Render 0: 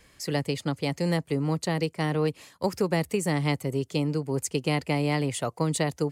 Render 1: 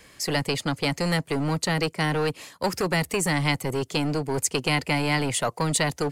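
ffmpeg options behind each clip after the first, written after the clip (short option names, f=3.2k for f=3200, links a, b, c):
-filter_complex "[0:a]lowshelf=f=92:g=-9.5,acrossover=split=920[a][b];[a]asoftclip=type=hard:threshold=-30dB[c];[c][b]amix=inputs=2:normalize=0,volume=7dB"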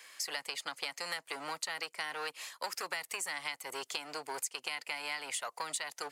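-af "highpass=950,acompressor=threshold=-34dB:ratio=6,volume=-1dB"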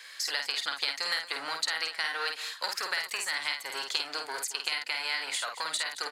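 -af "equalizer=f=160:t=o:w=0.67:g=-5,equalizer=f=1.6k:t=o:w=0.67:g=8,equalizer=f=4k:t=o:w=0.67:g=11,aecho=1:1:50|224:0.562|0.178"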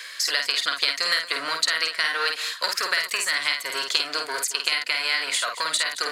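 -af "areverse,acompressor=mode=upward:threshold=-34dB:ratio=2.5,areverse,asuperstop=centerf=830:order=4:qfactor=4.7,volume=8dB"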